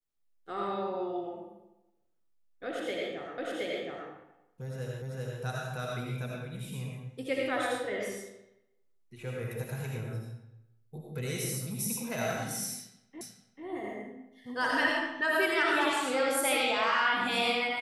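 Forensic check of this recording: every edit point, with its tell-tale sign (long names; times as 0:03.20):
0:03.38: the same again, the last 0.72 s
0:05.02: the same again, the last 0.39 s
0:13.21: the same again, the last 0.44 s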